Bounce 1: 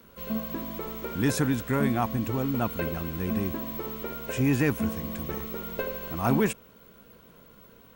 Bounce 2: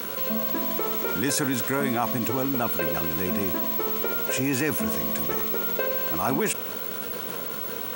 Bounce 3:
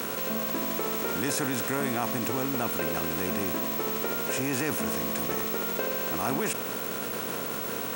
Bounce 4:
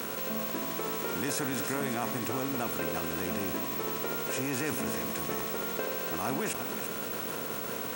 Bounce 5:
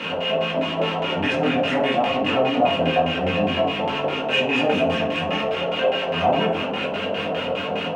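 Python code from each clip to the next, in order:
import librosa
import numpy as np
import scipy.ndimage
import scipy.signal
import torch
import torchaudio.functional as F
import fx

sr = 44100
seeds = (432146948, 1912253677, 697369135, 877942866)

y1 = scipy.signal.sosfilt(scipy.signal.butter(4, 80.0, 'highpass', fs=sr, output='sos'), x)
y1 = fx.bass_treble(y1, sr, bass_db=-10, treble_db=5)
y1 = fx.env_flatten(y1, sr, amount_pct=70)
y2 = fx.bin_compress(y1, sr, power=0.6)
y2 = y2 * librosa.db_to_amplitude(-6.5)
y3 = y2 + 10.0 ** (-9.5 / 20.0) * np.pad(y2, (int(339 * sr / 1000.0), 0))[:len(y2)]
y3 = y3 * librosa.db_to_amplitude(-3.5)
y4 = fx.filter_lfo_lowpass(y3, sr, shape='square', hz=4.9, low_hz=710.0, high_hz=2800.0, q=6.9)
y4 = fx.chorus_voices(y4, sr, voices=6, hz=0.91, base_ms=22, depth_ms=2.8, mix_pct=45)
y4 = fx.rev_fdn(y4, sr, rt60_s=0.45, lf_ratio=1.3, hf_ratio=0.7, size_ms=33.0, drr_db=-3.0)
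y4 = y4 * librosa.db_to_amplitude(6.0)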